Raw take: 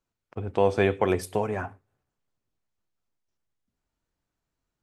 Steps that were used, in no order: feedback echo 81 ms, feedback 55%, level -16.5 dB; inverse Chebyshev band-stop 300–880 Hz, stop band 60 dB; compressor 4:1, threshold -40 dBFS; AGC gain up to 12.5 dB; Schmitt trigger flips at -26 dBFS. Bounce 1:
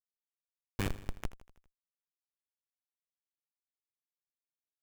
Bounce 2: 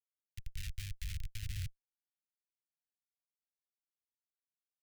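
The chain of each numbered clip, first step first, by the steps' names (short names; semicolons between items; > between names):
inverse Chebyshev band-stop > Schmitt trigger > feedback echo > compressor > AGC; feedback echo > compressor > AGC > Schmitt trigger > inverse Chebyshev band-stop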